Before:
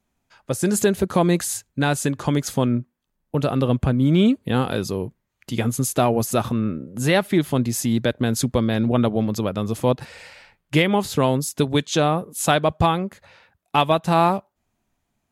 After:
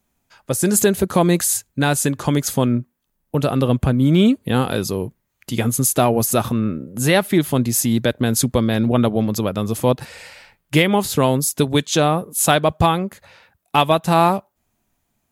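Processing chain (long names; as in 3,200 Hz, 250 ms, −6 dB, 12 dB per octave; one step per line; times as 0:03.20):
high-shelf EQ 10,000 Hz +12 dB
level +2.5 dB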